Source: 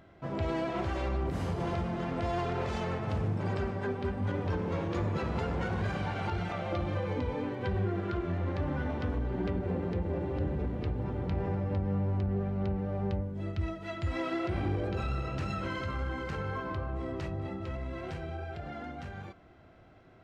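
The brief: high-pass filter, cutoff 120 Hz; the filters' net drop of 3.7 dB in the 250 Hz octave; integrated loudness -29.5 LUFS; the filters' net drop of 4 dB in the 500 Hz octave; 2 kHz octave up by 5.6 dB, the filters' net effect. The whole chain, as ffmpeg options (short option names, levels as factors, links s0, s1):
-af "highpass=120,equalizer=f=250:t=o:g=-3.5,equalizer=f=500:t=o:g=-4.5,equalizer=f=2000:t=o:g=7.5,volume=2.24"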